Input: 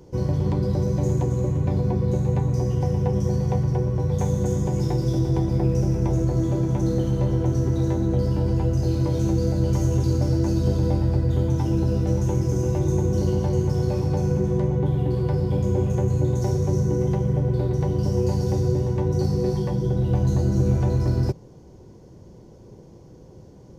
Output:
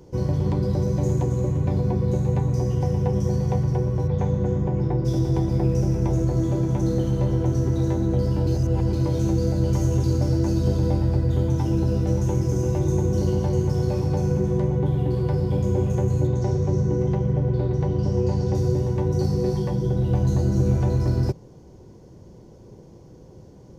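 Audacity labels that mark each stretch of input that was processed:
4.070000	5.040000	low-pass 3.5 kHz -> 1.8 kHz
8.470000	8.930000	reverse
16.270000	18.550000	distance through air 88 m

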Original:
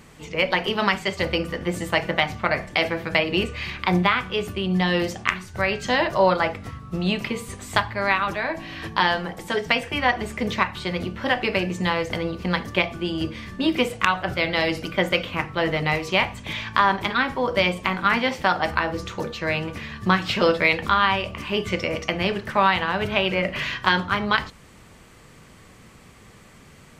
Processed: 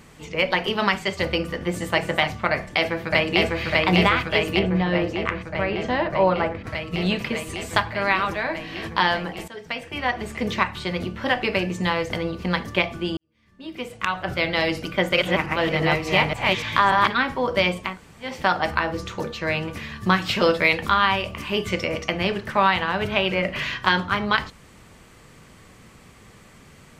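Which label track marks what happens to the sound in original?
1.520000	2.020000	echo throw 290 ms, feedback 10%, level -9 dB
2.520000	3.620000	echo throw 600 ms, feedback 80%, level -0.5 dB
4.590000	6.670000	low-pass 1.3 kHz 6 dB/octave
9.480000	10.470000	fade in, from -17 dB
13.170000	14.350000	fade in quadratic
14.880000	17.110000	chunks repeated in reverse 291 ms, level -1 dB
17.890000	18.300000	room tone, crossfade 0.24 s
19.710000	21.850000	treble shelf 8.5 kHz +7 dB

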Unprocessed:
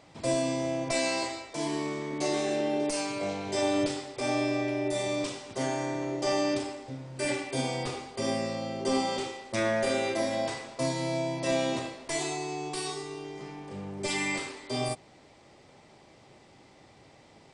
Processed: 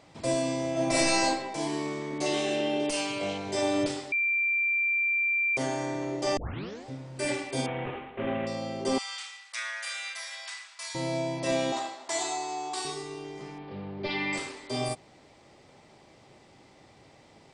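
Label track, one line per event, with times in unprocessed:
0.720000	1.250000	reverb throw, RT60 1 s, DRR -5 dB
2.260000	3.380000	peaking EQ 3 kHz +11.5 dB 0.4 oct
4.120000	5.570000	bleep 2.36 kHz -23.5 dBFS
6.370000	6.370000	tape start 0.49 s
7.660000	8.470000	CVSD coder 16 kbps
8.980000	10.950000	high-pass 1.3 kHz 24 dB/octave
11.720000	12.850000	cabinet simulation 370–8600 Hz, peaks and dips at 480 Hz -9 dB, 810 Hz +9 dB, 1.3 kHz +4 dB, 2.5 kHz -4 dB, 3.8 kHz +3 dB, 7.4 kHz +6 dB
13.580000	14.330000	steep low-pass 4.5 kHz 48 dB/octave

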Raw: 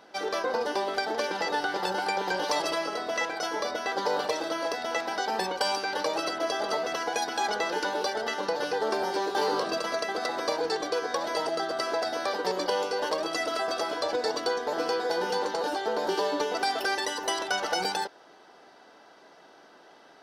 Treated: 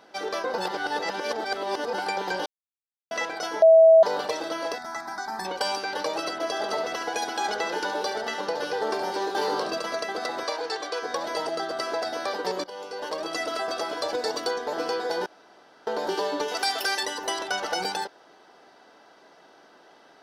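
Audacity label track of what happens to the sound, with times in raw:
0.580000	1.930000	reverse
2.460000	3.110000	mute
3.620000	4.030000	bleep 650 Hz -10 dBFS
4.780000	5.450000	static phaser centre 1.2 kHz, stages 4
6.460000	9.690000	delay 70 ms -9.5 dB
10.430000	11.030000	frequency weighting A
12.640000	13.360000	fade in, from -17 dB
13.970000	14.510000	treble shelf 7.6 kHz +7 dB
15.260000	15.870000	room tone
16.480000	17.030000	tilt EQ +2.5 dB/octave

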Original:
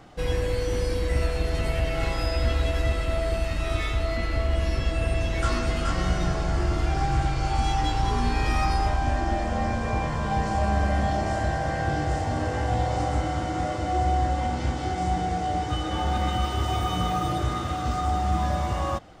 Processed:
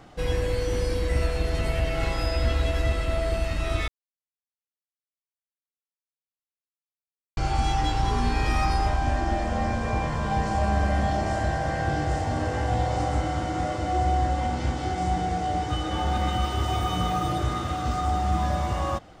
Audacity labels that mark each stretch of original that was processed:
3.880000	7.370000	mute

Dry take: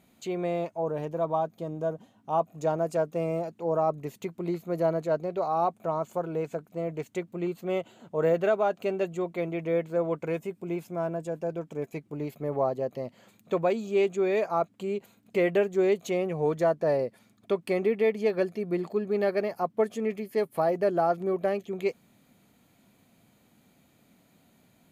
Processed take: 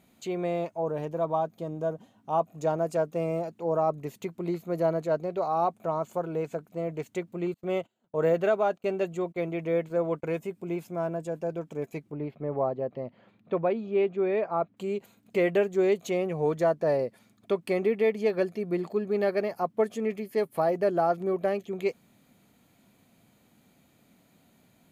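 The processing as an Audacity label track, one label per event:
7.540000	10.330000	gate -45 dBFS, range -26 dB
12.110000	14.770000	distance through air 350 m

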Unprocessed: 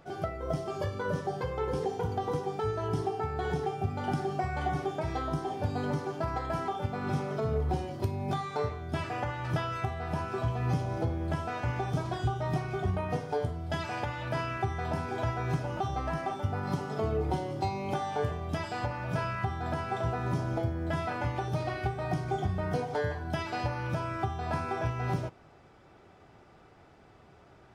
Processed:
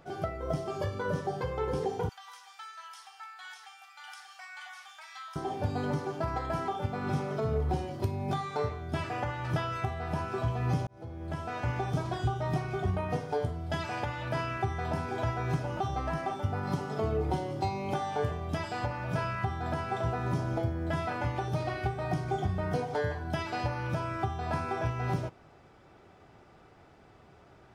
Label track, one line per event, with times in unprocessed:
2.090000	5.360000	Bessel high-pass 1.8 kHz, order 6
10.870000	11.640000	fade in

